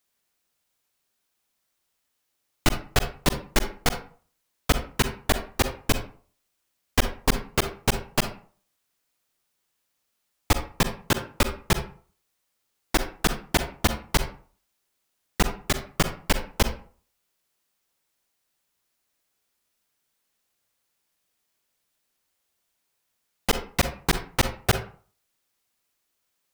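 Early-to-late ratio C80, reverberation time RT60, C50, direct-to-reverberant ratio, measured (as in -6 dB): 14.5 dB, 0.45 s, 9.0 dB, 8.0 dB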